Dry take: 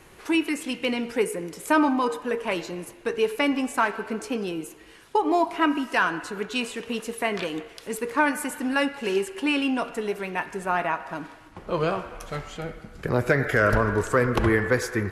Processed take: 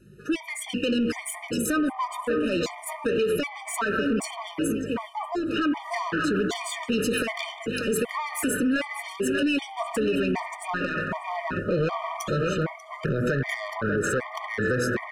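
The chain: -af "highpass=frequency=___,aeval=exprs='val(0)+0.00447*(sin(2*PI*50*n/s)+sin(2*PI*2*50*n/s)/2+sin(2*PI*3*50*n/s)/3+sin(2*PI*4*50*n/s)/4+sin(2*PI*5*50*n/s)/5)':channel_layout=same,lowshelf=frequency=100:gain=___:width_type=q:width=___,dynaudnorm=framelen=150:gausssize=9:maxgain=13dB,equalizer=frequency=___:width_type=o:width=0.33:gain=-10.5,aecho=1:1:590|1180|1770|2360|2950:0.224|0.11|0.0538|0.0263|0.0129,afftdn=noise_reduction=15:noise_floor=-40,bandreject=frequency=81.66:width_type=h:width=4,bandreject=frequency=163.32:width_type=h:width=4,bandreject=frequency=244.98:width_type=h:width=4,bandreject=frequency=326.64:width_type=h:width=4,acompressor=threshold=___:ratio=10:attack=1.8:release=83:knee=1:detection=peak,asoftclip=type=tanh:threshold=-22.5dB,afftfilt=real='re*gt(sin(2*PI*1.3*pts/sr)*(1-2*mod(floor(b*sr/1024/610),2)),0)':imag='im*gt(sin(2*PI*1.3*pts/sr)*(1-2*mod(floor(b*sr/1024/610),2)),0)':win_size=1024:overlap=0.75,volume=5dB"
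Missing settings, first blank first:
40, -10, 1.5, 810, -22dB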